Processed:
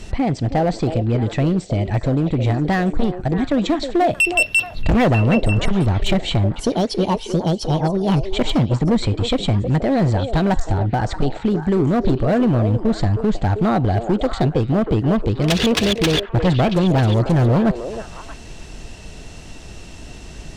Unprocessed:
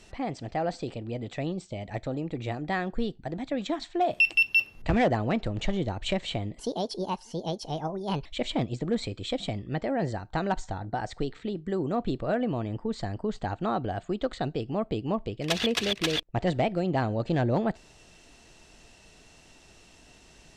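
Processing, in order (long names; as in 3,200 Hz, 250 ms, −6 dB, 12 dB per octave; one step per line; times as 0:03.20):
low-shelf EQ 230 Hz +11.5 dB
in parallel at +1 dB: downward compressor 10 to 1, threshold −31 dBFS, peak gain reduction 19.5 dB
on the sum: gain into a clipping stage and back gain 18 dB
echo through a band-pass that steps 315 ms, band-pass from 470 Hz, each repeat 1.4 octaves, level −5 dB
level +6 dB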